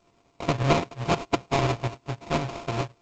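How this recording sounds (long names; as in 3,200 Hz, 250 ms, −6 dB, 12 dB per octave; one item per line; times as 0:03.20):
a buzz of ramps at a fixed pitch in blocks of 64 samples
tremolo saw up 9.6 Hz, depth 55%
aliases and images of a low sample rate 1,700 Hz, jitter 20%
G.722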